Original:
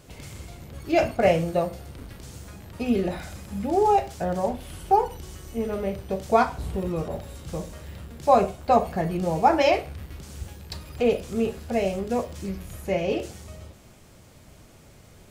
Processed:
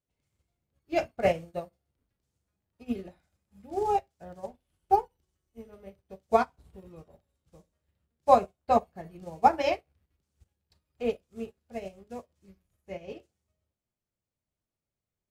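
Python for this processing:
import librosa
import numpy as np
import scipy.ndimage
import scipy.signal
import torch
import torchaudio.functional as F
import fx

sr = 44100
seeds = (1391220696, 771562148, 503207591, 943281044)

y = fx.upward_expand(x, sr, threshold_db=-40.0, expansion=2.5)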